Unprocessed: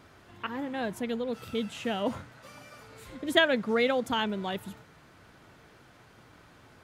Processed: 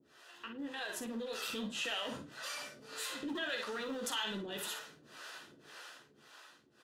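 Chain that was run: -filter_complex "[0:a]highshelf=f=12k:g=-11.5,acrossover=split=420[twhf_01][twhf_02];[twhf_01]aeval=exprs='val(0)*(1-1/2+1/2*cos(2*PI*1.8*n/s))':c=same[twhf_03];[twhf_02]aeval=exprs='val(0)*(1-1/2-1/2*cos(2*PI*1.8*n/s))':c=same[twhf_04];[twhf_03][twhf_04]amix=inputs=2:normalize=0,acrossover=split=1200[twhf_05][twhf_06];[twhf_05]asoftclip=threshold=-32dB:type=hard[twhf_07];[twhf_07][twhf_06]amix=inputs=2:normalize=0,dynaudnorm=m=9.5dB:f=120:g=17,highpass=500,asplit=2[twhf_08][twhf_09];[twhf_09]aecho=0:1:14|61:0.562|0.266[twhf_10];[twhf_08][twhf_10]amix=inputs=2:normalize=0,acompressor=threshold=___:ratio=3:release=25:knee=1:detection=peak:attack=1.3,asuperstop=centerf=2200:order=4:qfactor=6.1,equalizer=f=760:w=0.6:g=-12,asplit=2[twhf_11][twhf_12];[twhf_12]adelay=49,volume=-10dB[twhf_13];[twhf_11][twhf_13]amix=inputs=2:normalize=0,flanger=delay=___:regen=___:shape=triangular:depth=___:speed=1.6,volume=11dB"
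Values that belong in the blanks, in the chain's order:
-40dB, 5.7, -73, 9.2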